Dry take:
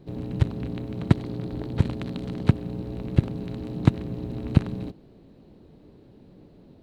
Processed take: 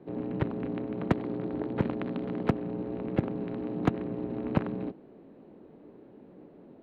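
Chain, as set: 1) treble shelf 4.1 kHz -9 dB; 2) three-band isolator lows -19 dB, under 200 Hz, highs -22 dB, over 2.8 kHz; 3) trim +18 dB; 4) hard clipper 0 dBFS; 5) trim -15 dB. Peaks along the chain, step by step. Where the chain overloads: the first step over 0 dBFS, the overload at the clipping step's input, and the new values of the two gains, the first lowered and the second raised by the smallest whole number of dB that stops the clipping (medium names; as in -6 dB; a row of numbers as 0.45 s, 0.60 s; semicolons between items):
-2.5 dBFS, -9.0 dBFS, +9.0 dBFS, 0.0 dBFS, -15.0 dBFS; step 3, 9.0 dB; step 3 +9 dB, step 5 -6 dB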